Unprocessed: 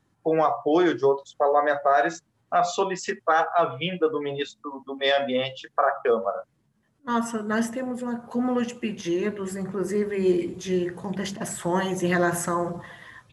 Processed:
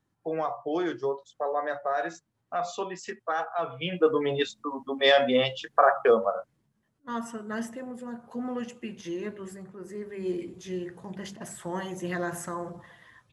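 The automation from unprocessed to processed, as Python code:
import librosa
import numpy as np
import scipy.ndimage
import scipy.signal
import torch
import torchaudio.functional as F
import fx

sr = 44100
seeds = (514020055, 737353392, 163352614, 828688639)

y = fx.gain(x, sr, db=fx.line((3.66, -8.5), (4.1, 2.0), (6.06, 2.0), (7.14, -8.5), (9.45, -8.5), (9.74, -15.5), (10.35, -9.0)))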